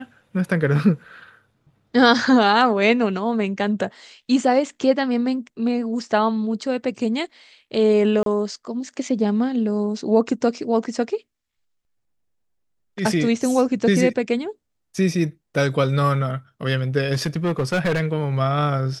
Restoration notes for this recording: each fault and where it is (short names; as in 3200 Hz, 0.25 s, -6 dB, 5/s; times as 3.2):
8.23–8.26 gap 32 ms
17.13–18.01 clipped -16.5 dBFS